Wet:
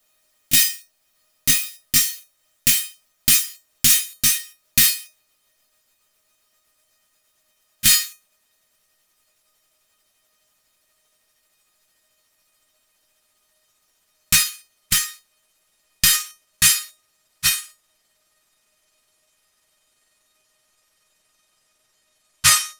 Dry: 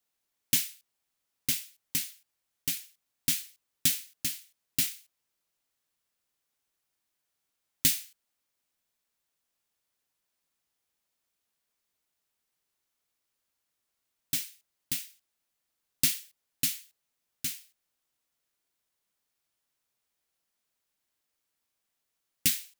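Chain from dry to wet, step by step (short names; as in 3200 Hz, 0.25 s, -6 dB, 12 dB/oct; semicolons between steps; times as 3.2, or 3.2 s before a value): gliding pitch shift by -10.5 st starting unshifted; resonator 620 Hz, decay 0.24 s, harmonics all, mix 90%; maximiser +33.5 dB; gain -1 dB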